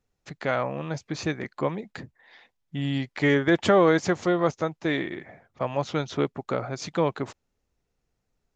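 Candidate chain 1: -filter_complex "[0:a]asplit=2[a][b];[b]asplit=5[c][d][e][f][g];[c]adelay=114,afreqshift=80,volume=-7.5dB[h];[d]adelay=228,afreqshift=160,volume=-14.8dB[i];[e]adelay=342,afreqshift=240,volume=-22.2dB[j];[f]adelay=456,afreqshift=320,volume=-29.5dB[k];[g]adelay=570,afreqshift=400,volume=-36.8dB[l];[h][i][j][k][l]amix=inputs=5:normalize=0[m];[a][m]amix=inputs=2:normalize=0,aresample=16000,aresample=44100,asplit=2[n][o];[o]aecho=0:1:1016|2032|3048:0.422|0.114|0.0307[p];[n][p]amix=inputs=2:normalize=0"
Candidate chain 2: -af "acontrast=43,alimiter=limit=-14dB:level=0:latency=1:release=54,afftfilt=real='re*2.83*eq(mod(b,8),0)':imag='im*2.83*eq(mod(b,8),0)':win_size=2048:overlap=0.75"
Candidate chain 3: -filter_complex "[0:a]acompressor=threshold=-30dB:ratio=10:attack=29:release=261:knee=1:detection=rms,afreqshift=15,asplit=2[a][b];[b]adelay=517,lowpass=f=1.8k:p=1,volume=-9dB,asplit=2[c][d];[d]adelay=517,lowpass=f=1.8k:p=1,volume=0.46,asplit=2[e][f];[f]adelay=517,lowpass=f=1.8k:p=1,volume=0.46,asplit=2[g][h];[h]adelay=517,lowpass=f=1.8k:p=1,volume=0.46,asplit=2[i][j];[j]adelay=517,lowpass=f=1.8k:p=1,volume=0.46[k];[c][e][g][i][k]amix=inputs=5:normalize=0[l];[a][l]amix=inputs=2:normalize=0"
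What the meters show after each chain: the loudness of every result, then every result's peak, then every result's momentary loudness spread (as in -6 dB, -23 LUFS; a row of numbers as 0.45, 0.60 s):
-25.5, -27.0, -35.5 LUFS; -6.0, -8.0, -19.0 dBFS; 16, 17, 12 LU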